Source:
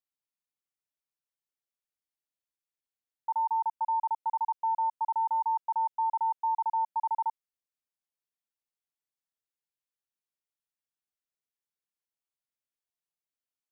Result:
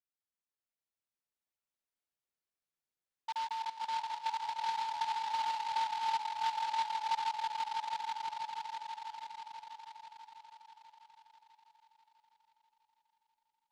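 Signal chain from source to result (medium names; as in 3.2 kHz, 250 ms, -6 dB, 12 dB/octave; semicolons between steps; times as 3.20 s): 6.18–7.07 s: peaking EQ 980 Hz -4.5 dB 0.36 oct; echo with a slow build-up 163 ms, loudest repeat 5, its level -4.5 dB; delay time shaken by noise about 2.7 kHz, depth 0.048 ms; trim -8 dB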